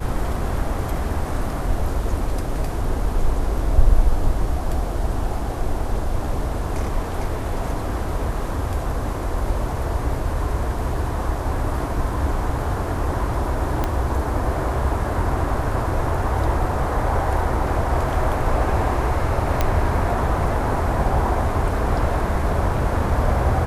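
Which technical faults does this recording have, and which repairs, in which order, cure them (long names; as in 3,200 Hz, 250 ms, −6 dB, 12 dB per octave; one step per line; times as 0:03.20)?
0:13.84: click −9 dBFS
0:19.61: click −5 dBFS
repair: click removal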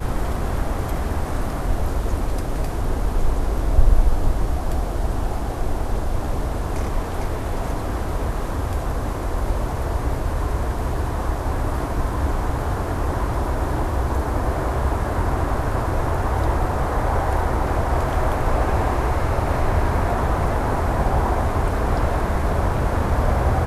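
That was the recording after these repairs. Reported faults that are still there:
0:13.84: click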